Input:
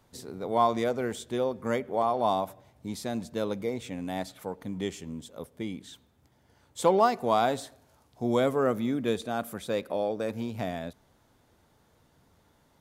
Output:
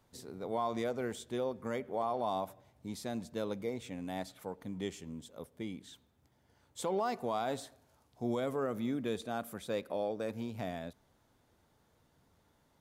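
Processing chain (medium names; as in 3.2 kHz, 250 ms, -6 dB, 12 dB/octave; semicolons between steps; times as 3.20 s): peak limiter -18.5 dBFS, peak gain reduction 8.5 dB; trim -6 dB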